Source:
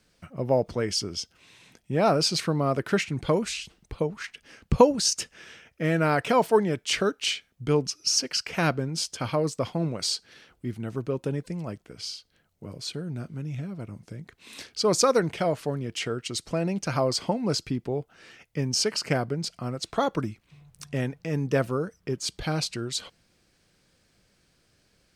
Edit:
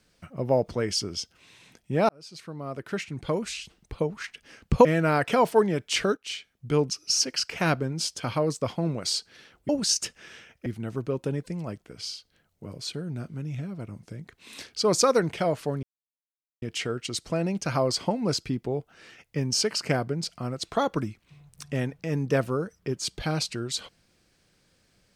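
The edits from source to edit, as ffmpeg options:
-filter_complex "[0:a]asplit=7[a][b][c][d][e][f][g];[a]atrim=end=2.09,asetpts=PTS-STARTPTS,afade=t=out:st=2.086:d=0.004:c=hsin[h];[b]atrim=start=2.09:end=4.852,asetpts=PTS-STARTPTS,afade=t=in:d=1.93[i];[c]atrim=start=5.818:end=7.14,asetpts=PTS-STARTPTS,afade=t=out:st=1.318:d=0.004:c=hsin:silence=0.237137[j];[d]atrim=start=7.14:end=10.662,asetpts=PTS-STARTPTS,afade=t=in:d=0.62:silence=0.237137[k];[e]atrim=start=4.848:end=5.822[l];[f]atrim=start=10.658:end=15.83,asetpts=PTS-STARTPTS,afade=t=out:st=5.168:d=0.004:c=hsin,apad=pad_dur=0.79[m];[g]atrim=start=15.83,asetpts=PTS-STARTPTS,afade=t=in:d=0.004:c=hsin[n];[h][i]concat=n=2:v=0:a=1[o];[j][k]concat=n=2:v=0:a=1[p];[o][p]acrossfade=d=0.004:c1=hsin:c2=hsin[q];[q][l]acrossfade=d=0.004:c1=hsin:c2=hsin[r];[m][n]concat=n=2:v=0:a=1[s];[r][s]acrossfade=d=0.004:c1=hsin:c2=hsin"

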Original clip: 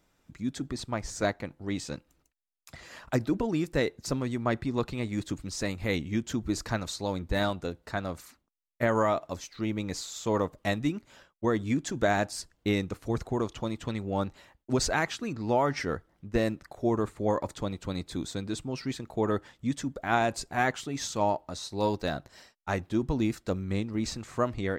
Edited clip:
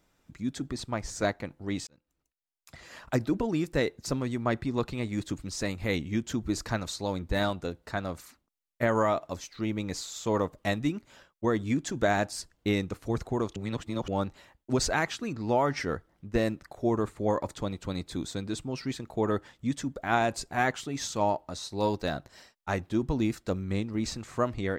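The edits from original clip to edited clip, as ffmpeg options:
-filter_complex "[0:a]asplit=4[a][b][c][d];[a]atrim=end=1.87,asetpts=PTS-STARTPTS,afade=t=out:st=1.866:d=0.004:c=hsin[e];[b]atrim=start=1.87:end=13.562,asetpts=PTS-STARTPTS,afade=t=in:d=1.13[f];[c]atrim=start=13.558:end=14.082,asetpts=PTS-STARTPTS,areverse[g];[d]atrim=start=14.078[h];[e][f]concat=n=2:v=0:a=1[i];[i][g]acrossfade=d=0.004:c1=hsin:c2=hsin[j];[j][h]acrossfade=d=0.004:c1=hsin:c2=hsin"

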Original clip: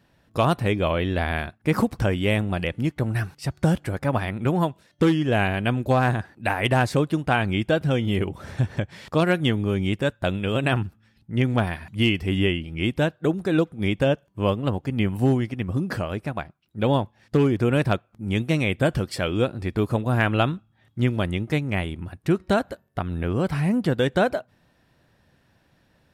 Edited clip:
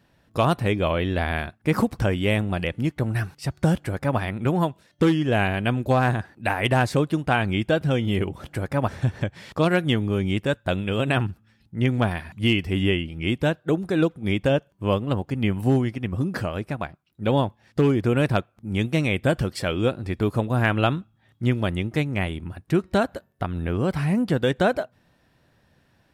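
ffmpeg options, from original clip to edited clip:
-filter_complex "[0:a]asplit=3[a][b][c];[a]atrim=end=8.442[d];[b]atrim=start=3.748:end=4.192[e];[c]atrim=start=8.438[f];[d][e]acrossfade=d=0.004:c1=hsin:c2=hsin[g];[g][f]acrossfade=d=0.004:c1=hsin:c2=hsin"

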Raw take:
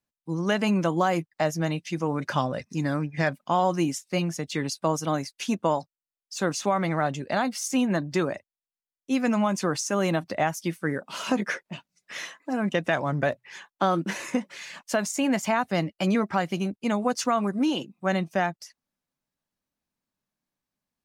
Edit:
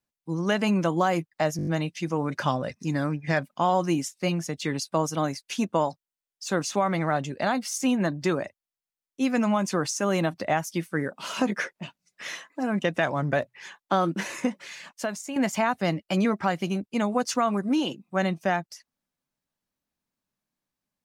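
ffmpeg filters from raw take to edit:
-filter_complex "[0:a]asplit=7[a][b][c][d][e][f][g];[a]atrim=end=1.592[h];[b]atrim=start=1.568:end=1.592[i];[c]atrim=start=1.568:end=1.592[j];[d]atrim=start=1.568:end=1.592[k];[e]atrim=start=1.568:end=1.592[l];[f]atrim=start=1.568:end=15.26,asetpts=PTS-STARTPTS,afade=t=out:st=12.932:d=0.76:silence=0.316228[m];[g]atrim=start=15.26,asetpts=PTS-STARTPTS,afade=t=in:d=0.004:c=hsin:silence=0.316228[n];[h][i]acrossfade=d=0.004:c1=hsin:c2=hsin[o];[o][j]acrossfade=d=0.004:c1=hsin:c2=hsin[p];[p][k]acrossfade=d=0.004:c1=hsin:c2=hsin[q];[q][l]acrossfade=d=0.004:c1=hsin:c2=hsin[r];[m][n]concat=n=2:v=0:a=1[s];[r][s]acrossfade=d=0.004:c1=hsin:c2=hsin"

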